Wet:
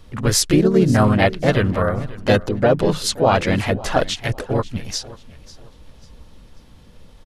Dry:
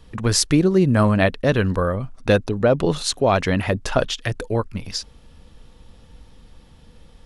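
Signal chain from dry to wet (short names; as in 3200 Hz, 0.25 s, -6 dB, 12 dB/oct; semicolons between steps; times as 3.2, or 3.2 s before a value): feedback echo 0.54 s, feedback 32%, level -19 dB; harmoniser -4 st -12 dB, +3 st -4 dB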